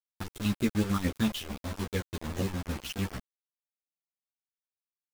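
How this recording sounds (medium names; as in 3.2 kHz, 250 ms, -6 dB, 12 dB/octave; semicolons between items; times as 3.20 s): chopped level 6.7 Hz, depth 65%, duty 50%; phasing stages 6, 3.8 Hz, lowest notch 480–1900 Hz; a quantiser's noise floor 6-bit, dither none; a shimmering, thickened sound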